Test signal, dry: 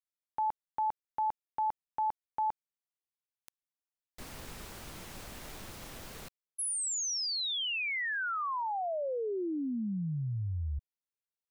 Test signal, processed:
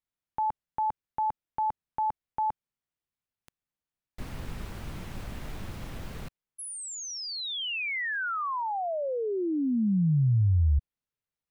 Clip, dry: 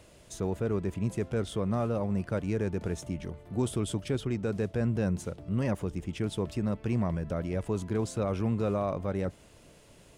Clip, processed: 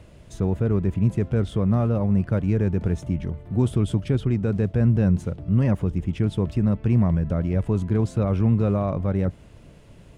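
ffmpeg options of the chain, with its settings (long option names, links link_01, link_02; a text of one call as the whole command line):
ffmpeg -i in.wav -af "bass=frequency=250:gain=9,treble=frequency=4000:gain=-8,volume=3dB" out.wav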